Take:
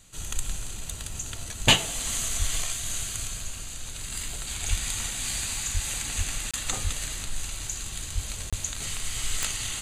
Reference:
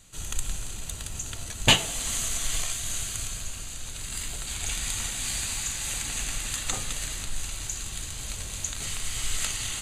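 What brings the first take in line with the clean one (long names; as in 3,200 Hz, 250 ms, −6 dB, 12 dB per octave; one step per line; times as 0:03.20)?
click removal
high-pass at the plosives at 0:02.38/0:04.69/0:05.73/0:06.17/0:06.83/0:08.14/0:08.49
repair the gap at 0:06.51/0:08.50, 26 ms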